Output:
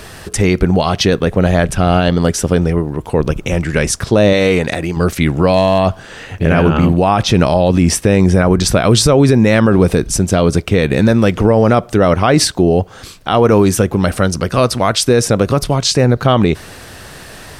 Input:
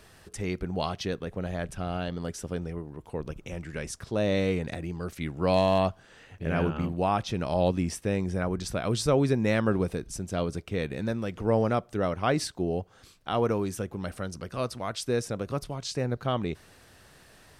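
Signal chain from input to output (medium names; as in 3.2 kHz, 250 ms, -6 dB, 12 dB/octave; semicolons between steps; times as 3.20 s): 4.33–4.97 s: bass shelf 290 Hz -9.5 dB; loudness maximiser +22 dB; trim -1 dB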